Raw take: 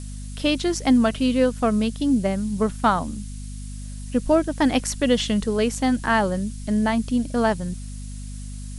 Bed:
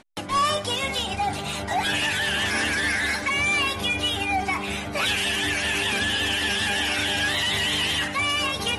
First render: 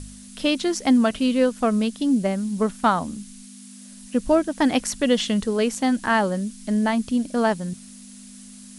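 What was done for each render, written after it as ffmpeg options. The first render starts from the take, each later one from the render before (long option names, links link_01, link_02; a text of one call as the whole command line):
ffmpeg -i in.wav -af "bandreject=frequency=50:width_type=h:width=4,bandreject=frequency=100:width_type=h:width=4,bandreject=frequency=150:width_type=h:width=4" out.wav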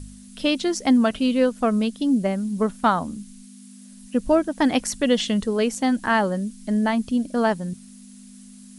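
ffmpeg -i in.wav -af "afftdn=noise_reduction=6:noise_floor=-43" out.wav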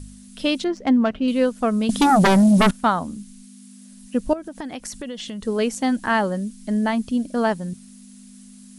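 ffmpeg -i in.wav -filter_complex "[0:a]asettb=1/sr,asplit=3[link_01][link_02][link_03];[link_01]atrim=end=0.644[link_04];[link_02]atrim=start=0.64:end=1.28,asetpts=PTS-STARTPTS,afade=type=in:duration=0.004:curve=qsin,afade=type=out:start_time=0.636:duration=0.004:curve=qsin,adynamicsmooth=sensitivity=0.5:basefreq=2200[link_05];[link_03]atrim=start=1.276[link_06];[link_04][link_05]acrossfade=duration=0.004:curve1=hsin:curve2=qsin[link_07];[link_07][link_06]acrossfade=duration=0.004:curve1=qsin:curve2=hsin,asettb=1/sr,asplit=3[link_08][link_09][link_10];[link_08]atrim=end=1.894[link_11];[link_09]atrim=start=1.89:end=2.71,asetpts=PTS-STARTPTS,afade=type=in:duration=0.004:curve=qsin,afade=type=out:start_time=0.816:duration=0.004:curve=qsin,aeval=exprs='0.282*sin(PI/2*3.98*val(0)/0.282)':channel_layout=same[link_12];[link_10]atrim=start=2.706[link_13];[link_11][link_12]acrossfade=duration=0.004:curve1=hsin:curve2=qsin[link_14];[link_14][link_13]acrossfade=duration=0.004:curve1=qsin:curve2=hsin,asettb=1/sr,asplit=3[link_15][link_16][link_17];[link_15]atrim=end=4.334[link_18];[link_16]atrim=start=4.33:end=5.47,asetpts=PTS-STARTPTS,afade=type=in:duration=0.004:curve=qsin,afade=type=out:start_time=1.136:duration=0.004:curve=qsin,acompressor=threshold=-29dB:ratio=6:attack=3.2:release=140:knee=1:detection=peak[link_19];[link_17]atrim=start=5.466[link_20];[link_18][link_19]acrossfade=duration=0.004:curve1=hsin:curve2=qsin[link_21];[link_21][link_20]acrossfade=duration=0.004:curve1=qsin:curve2=hsin" out.wav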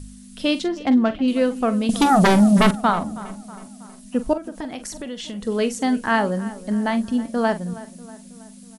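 ffmpeg -i in.wav -filter_complex "[0:a]asplit=2[link_01][link_02];[link_02]adelay=44,volume=-12dB[link_03];[link_01][link_03]amix=inputs=2:normalize=0,asplit=2[link_04][link_05];[link_05]adelay=321,lowpass=frequency=3500:poles=1,volume=-17.5dB,asplit=2[link_06][link_07];[link_07]adelay=321,lowpass=frequency=3500:poles=1,volume=0.53,asplit=2[link_08][link_09];[link_09]adelay=321,lowpass=frequency=3500:poles=1,volume=0.53,asplit=2[link_10][link_11];[link_11]adelay=321,lowpass=frequency=3500:poles=1,volume=0.53,asplit=2[link_12][link_13];[link_13]adelay=321,lowpass=frequency=3500:poles=1,volume=0.53[link_14];[link_04][link_06][link_08][link_10][link_12][link_14]amix=inputs=6:normalize=0" out.wav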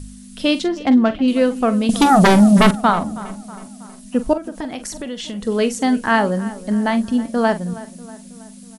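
ffmpeg -i in.wav -af "volume=3.5dB" out.wav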